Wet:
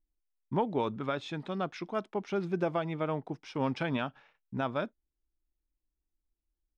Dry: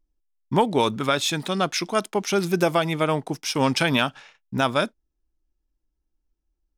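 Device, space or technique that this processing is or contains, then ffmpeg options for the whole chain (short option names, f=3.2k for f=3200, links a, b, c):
phone in a pocket: -af "lowpass=3.9k,highshelf=f=2.1k:g=-10.5,volume=-9dB"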